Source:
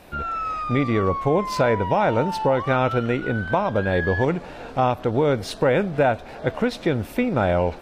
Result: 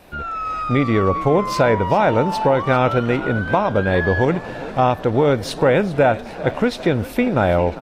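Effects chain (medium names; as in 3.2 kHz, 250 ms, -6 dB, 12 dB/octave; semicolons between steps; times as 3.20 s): level rider gain up to 4 dB; wow and flutter 25 cents; frequency-shifting echo 398 ms, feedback 58%, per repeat +36 Hz, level -17 dB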